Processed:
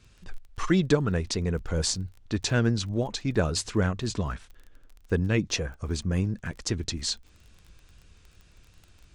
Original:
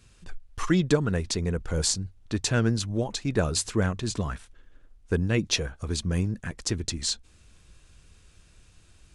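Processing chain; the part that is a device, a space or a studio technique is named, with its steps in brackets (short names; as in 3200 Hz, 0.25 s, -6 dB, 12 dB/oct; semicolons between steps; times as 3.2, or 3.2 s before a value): lo-fi chain (LPF 6800 Hz 12 dB/oct; wow and flutter; crackle 22/s -40 dBFS); 5.49–6.17 bell 3700 Hz -5.5 dB 0.77 oct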